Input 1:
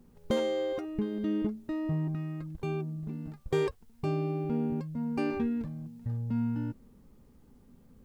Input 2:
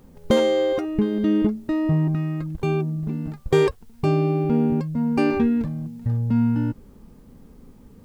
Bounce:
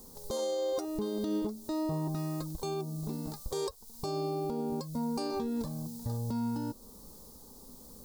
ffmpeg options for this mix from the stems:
-filter_complex "[0:a]equalizer=f=125:t=o:w=1:g=-7,equalizer=f=500:t=o:w=1:g=7,equalizer=f=1000:t=o:w=1:g=12,equalizer=f=2000:t=o:w=1:g=-11,equalizer=f=4000:t=o:w=1:g=7,volume=1.12[s0];[1:a]acompressor=threshold=0.0398:ratio=6,tremolo=f=1.4:d=0.49,volume=0.299[s1];[s0][s1]amix=inputs=2:normalize=0,aexciter=amount=9.7:drive=2.9:freq=4000,alimiter=level_in=1.19:limit=0.0631:level=0:latency=1:release=309,volume=0.841"

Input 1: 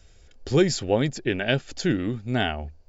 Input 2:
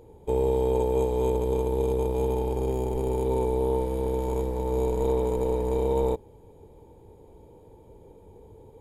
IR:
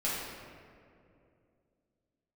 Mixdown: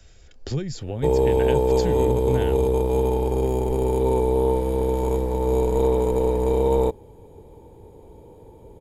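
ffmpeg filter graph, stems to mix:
-filter_complex "[0:a]acrossover=split=140[s0][s1];[s1]acompressor=threshold=0.02:ratio=10[s2];[s0][s2]amix=inputs=2:normalize=0,volume=1.41[s3];[1:a]dynaudnorm=f=110:g=3:m=2,adelay=750,volume=0.891[s4];[s3][s4]amix=inputs=2:normalize=0"

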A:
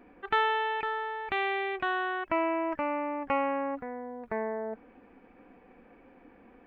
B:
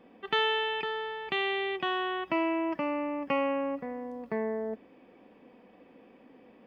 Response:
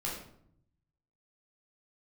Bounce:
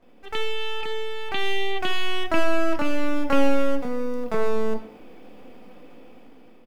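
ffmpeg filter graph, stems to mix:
-filter_complex "[0:a]bandpass=f=560:t=q:w=1.1:csg=0,aeval=exprs='max(val(0),0)':c=same,volume=0.708,asplit=2[s0][s1];[s1]volume=0.668[s2];[1:a]equalizer=f=1300:w=1.4:g=-12,acompressor=threshold=0.0224:ratio=6,adelay=24,volume=0.944[s3];[2:a]atrim=start_sample=2205[s4];[s2][s4]afir=irnorm=-1:irlink=0[s5];[s0][s3][s5]amix=inputs=3:normalize=0,highshelf=f=3700:g=12,dynaudnorm=f=540:g=5:m=2.82"

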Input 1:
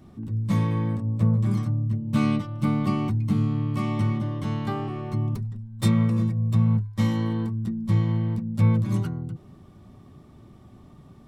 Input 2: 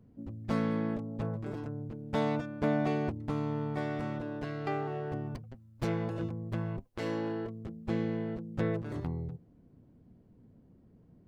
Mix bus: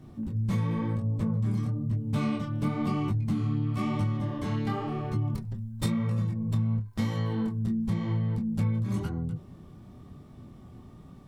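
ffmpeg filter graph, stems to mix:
-filter_complex "[0:a]flanger=delay=19.5:depth=7.2:speed=0.97,volume=1.26[s0];[1:a]lowshelf=f=340:g=8.5,acompressor=threshold=0.0224:ratio=6,bass=f=250:g=4,treble=f=4000:g=14,volume=0.668[s1];[s0][s1]amix=inputs=2:normalize=0,acompressor=threshold=0.0631:ratio=6"

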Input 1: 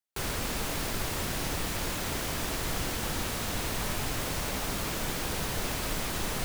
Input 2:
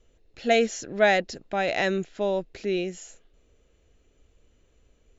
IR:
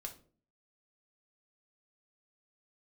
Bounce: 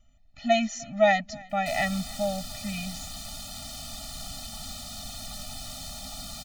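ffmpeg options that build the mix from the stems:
-filter_complex "[0:a]equalizer=f=125:t=o:w=1:g=-6,equalizer=f=2000:t=o:w=1:g=-9,equalizer=f=4000:t=o:w=1:g=10,equalizer=f=8000:t=o:w=1:g=5,acompressor=mode=upward:threshold=0.0141:ratio=2.5,adelay=1500,volume=0.501[s0];[1:a]volume=1.12,asplit=2[s1][s2];[s2]volume=0.0631,aecho=0:1:303|606|909|1212:1|0.3|0.09|0.027[s3];[s0][s1][s3]amix=inputs=3:normalize=0,afftfilt=real='re*eq(mod(floor(b*sr/1024/290),2),0)':imag='im*eq(mod(floor(b*sr/1024/290),2),0)':win_size=1024:overlap=0.75"

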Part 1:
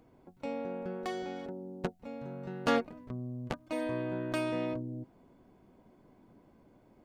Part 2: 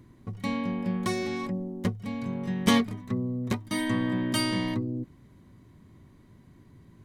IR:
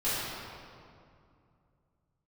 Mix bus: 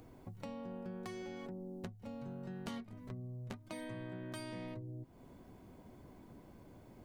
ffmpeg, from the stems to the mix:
-filter_complex "[0:a]highshelf=f=4700:g=8.5,acompressor=threshold=0.01:ratio=3,volume=1.41[s0];[1:a]lowshelf=f=94:g=12,volume=0.224[s1];[s0][s1]amix=inputs=2:normalize=0,acompressor=threshold=0.00447:ratio=2.5"

